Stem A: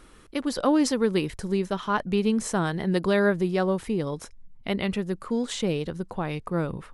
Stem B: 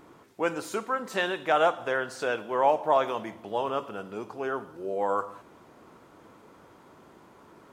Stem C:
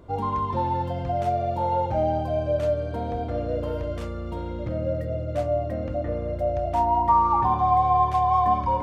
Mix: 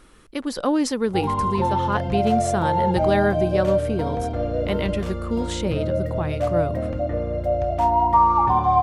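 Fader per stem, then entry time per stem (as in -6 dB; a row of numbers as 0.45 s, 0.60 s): +0.5 dB, mute, +3.0 dB; 0.00 s, mute, 1.05 s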